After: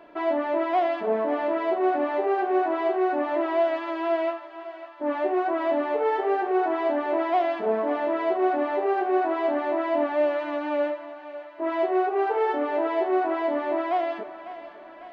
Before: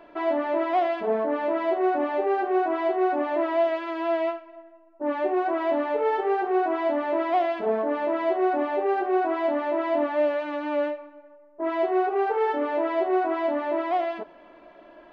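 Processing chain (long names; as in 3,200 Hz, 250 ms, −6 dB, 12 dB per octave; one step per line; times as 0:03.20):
high-pass filter 50 Hz 6 dB per octave
on a send: feedback echo with a high-pass in the loop 550 ms, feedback 64%, high-pass 520 Hz, level −13 dB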